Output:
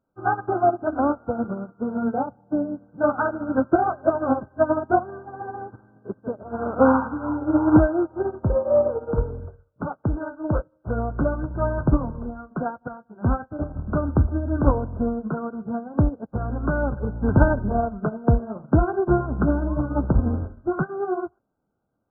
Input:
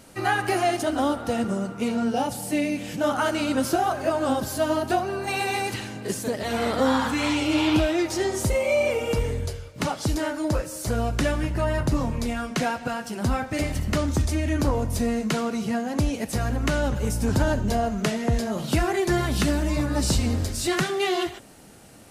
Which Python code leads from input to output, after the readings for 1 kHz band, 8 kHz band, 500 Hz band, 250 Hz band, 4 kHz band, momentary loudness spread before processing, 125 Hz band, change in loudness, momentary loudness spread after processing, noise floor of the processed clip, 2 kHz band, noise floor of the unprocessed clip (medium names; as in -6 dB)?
+1.0 dB, under -40 dB, +1.5 dB, +1.5 dB, under -40 dB, 5 LU, +2.0 dB, +1.0 dB, 12 LU, -68 dBFS, -4.5 dB, -40 dBFS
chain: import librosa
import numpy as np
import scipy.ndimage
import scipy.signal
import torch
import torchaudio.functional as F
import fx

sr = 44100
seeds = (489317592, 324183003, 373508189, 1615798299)

y = fx.brickwall_lowpass(x, sr, high_hz=1600.0)
y = fx.upward_expand(y, sr, threshold_db=-41.0, expansion=2.5)
y = y * librosa.db_to_amplitude(8.5)